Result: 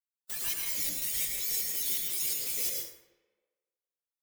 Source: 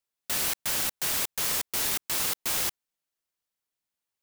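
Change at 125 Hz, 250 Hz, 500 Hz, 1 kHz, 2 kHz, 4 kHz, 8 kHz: −9.5 dB, −9.0 dB, −9.5 dB, below −15 dB, −8.5 dB, −5.5 dB, −3.0 dB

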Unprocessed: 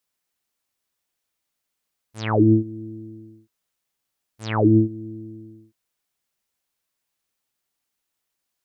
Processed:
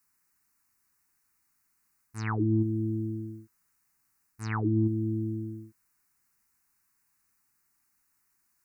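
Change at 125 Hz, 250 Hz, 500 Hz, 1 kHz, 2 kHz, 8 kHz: −5.0 dB, −8.5 dB, −11.5 dB, −9.5 dB, −5.5 dB, can't be measured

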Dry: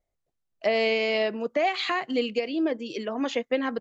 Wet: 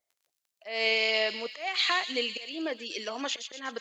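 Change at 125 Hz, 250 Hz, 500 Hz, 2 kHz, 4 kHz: can't be measured, −11.0 dB, −8.0 dB, +0.5 dB, +4.0 dB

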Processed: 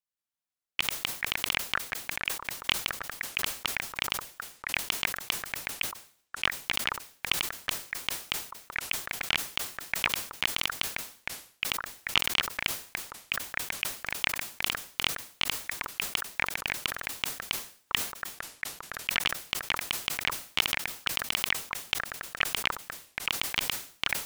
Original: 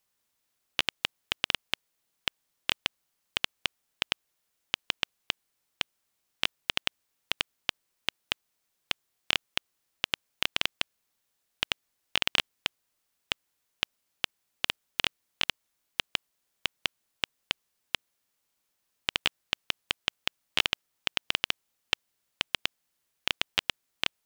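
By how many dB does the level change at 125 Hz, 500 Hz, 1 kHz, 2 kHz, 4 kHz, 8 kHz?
+3.0, +1.0, +4.0, +3.0, −0.5, +10.0 decibels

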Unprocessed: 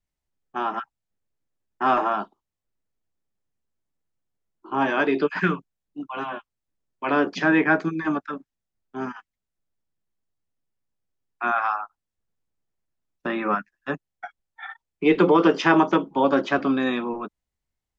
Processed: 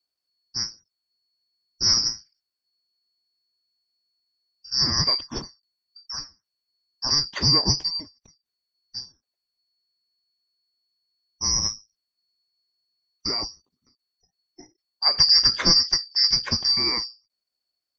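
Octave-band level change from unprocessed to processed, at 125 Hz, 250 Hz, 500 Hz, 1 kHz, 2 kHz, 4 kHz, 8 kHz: +1.0 dB, −14.0 dB, −16.5 dB, −13.5 dB, −12.0 dB, +19.5 dB, can't be measured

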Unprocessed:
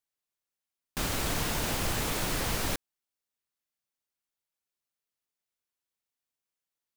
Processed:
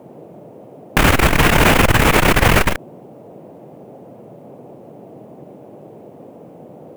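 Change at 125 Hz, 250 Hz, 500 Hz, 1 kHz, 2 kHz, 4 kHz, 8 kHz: +19.0, +19.0, +19.5, +19.5, +20.5, +13.5, +9.5 decibels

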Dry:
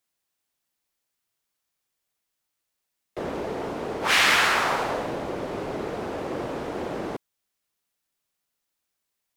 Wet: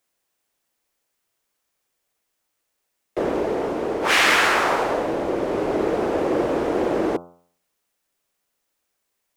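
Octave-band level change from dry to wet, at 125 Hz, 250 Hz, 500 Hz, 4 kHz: +2.5, +8.5, +8.5, +0.5 decibels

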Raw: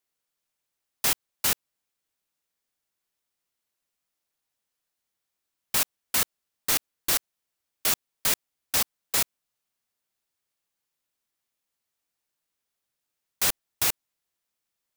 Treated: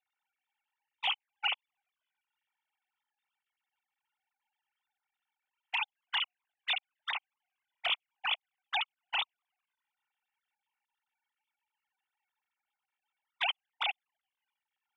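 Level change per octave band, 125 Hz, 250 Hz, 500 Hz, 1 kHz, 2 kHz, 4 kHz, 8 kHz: below −30 dB, below −30 dB, −10.5 dB, −1.0 dB, −0.5 dB, −2.0 dB, below −40 dB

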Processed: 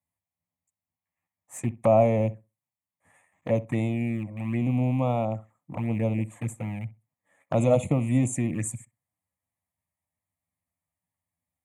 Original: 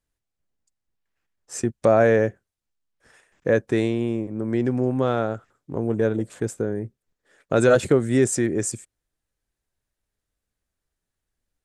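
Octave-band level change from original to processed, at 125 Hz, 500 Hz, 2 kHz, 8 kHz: +1.5, −6.0, −11.0, −7.0 decibels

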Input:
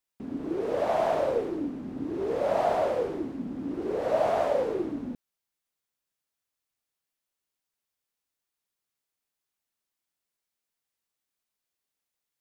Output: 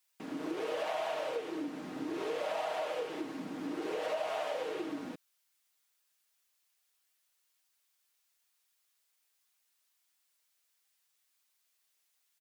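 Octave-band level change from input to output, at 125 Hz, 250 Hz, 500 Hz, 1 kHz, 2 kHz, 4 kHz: −12.5, −7.0, −9.5, −8.5, −1.5, +2.5 decibels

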